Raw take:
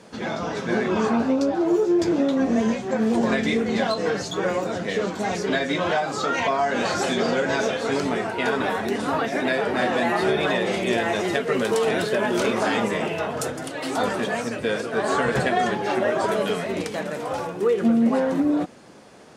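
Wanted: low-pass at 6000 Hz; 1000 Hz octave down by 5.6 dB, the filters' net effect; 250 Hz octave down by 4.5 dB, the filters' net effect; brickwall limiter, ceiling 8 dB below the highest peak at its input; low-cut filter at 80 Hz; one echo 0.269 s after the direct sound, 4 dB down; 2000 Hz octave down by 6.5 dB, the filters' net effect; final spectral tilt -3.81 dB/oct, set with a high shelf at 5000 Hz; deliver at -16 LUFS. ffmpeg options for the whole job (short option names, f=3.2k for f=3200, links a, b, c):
-af "highpass=80,lowpass=6k,equalizer=f=250:t=o:g=-5,equalizer=f=1k:t=o:g=-6.5,equalizer=f=2k:t=o:g=-6.5,highshelf=f=5k:g=4,alimiter=limit=-21dB:level=0:latency=1,aecho=1:1:269:0.631,volume=12.5dB"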